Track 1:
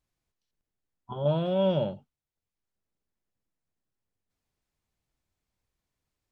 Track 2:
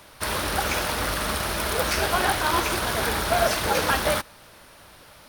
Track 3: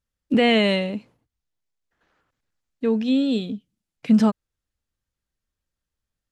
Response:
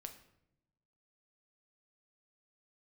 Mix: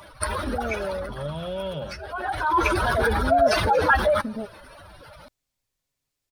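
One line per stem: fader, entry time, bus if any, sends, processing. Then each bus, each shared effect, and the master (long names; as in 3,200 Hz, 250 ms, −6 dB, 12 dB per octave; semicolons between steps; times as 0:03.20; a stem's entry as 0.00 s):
−3.5 dB, 0.00 s, bus A, no send, no processing
+2.5 dB, 0.00 s, no bus, no send, expanding power law on the bin magnitudes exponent 2.5; automatic ducking −18 dB, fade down 1.45 s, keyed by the first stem
−1.0 dB, 0.15 s, bus A, no send, transistor ladder low-pass 650 Hz, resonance 60%
bus A: 0.0 dB, comb filter 7.4 ms, depth 45%; downward compressor, threshold −28 dBFS, peak gain reduction 8.5 dB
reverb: not used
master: high-shelf EQ 2,300 Hz +10 dB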